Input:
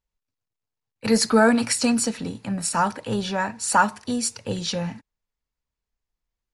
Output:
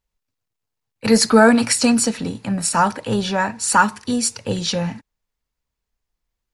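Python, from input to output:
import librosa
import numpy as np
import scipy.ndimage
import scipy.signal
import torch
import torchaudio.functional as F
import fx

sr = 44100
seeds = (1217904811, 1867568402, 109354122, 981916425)

y = fx.peak_eq(x, sr, hz=660.0, db=-10.0, octaves=0.45, at=(3.71, 4.13))
y = y * 10.0 ** (5.0 / 20.0)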